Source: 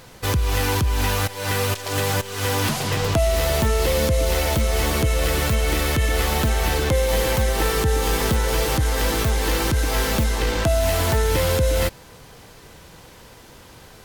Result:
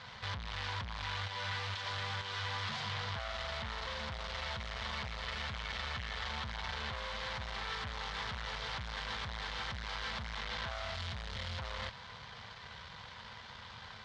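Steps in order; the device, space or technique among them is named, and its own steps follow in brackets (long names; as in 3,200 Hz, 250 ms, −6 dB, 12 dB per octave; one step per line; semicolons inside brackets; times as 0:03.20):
0:10.95–0:11.59: parametric band 860 Hz −11.5 dB 2 octaves
scooped metal amplifier (tube saturation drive 37 dB, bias 0.7; loudspeaker in its box 86–3,800 Hz, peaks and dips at 99 Hz +3 dB, 220 Hz +10 dB, 1,000 Hz +4 dB, 2,600 Hz −7 dB; guitar amp tone stack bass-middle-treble 10-0-10)
level +9.5 dB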